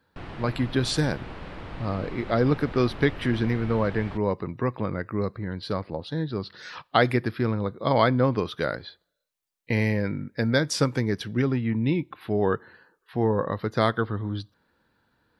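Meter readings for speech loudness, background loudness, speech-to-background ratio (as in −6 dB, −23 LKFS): −26.5 LKFS, −40.0 LKFS, 13.5 dB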